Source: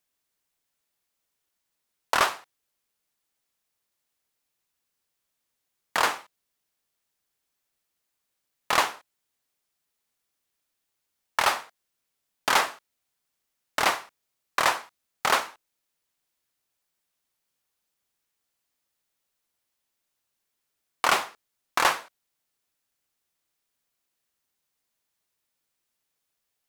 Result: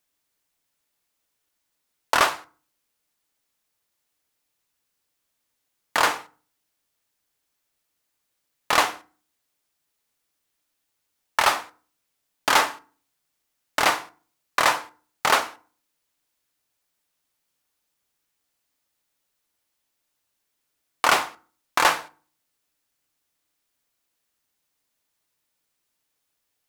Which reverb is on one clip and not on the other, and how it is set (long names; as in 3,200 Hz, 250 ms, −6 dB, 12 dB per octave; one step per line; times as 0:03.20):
feedback delay network reverb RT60 0.41 s, low-frequency decay 1.3×, high-frequency decay 0.65×, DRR 11.5 dB
level +3 dB